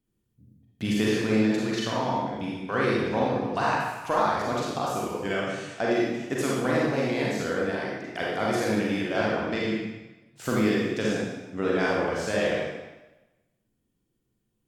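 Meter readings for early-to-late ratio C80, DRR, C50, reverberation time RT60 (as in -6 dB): 2.0 dB, -5.0 dB, -2.0 dB, 1.0 s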